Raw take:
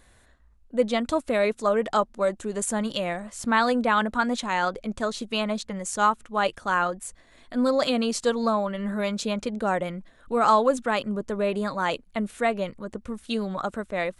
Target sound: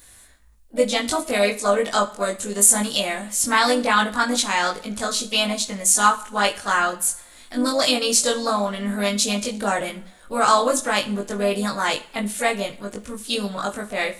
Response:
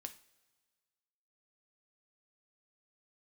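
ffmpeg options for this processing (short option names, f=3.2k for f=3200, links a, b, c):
-filter_complex "[0:a]asplit=2[a][b];[b]asetrate=52444,aresample=44100,atempo=0.840896,volume=-12dB[c];[a][c]amix=inputs=2:normalize=0,crystalizer=i=5:c=0,asplit=2[d][e];[1:a]atrim=start_sample=2205,adelay=20[f];[e][f]afir=irnorm=-1:irlink=0,volume=4dB[g];[d][g]amix=inputs=2:normalize=0,volume=-2dB"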